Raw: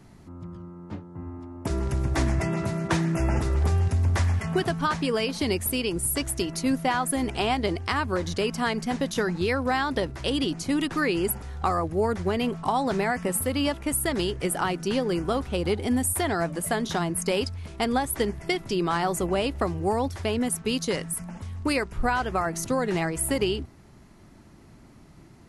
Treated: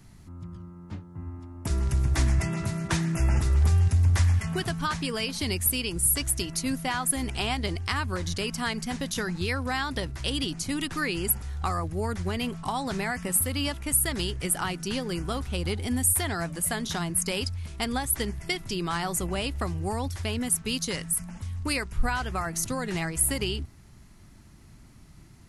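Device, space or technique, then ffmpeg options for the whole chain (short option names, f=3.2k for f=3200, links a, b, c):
smiley-face EQ: -af "lowshelf=f=130:g=4.5,equalizer=f=470:t=o:w=2.5:g=-8.5,highshelf=f=6.7k:g=6"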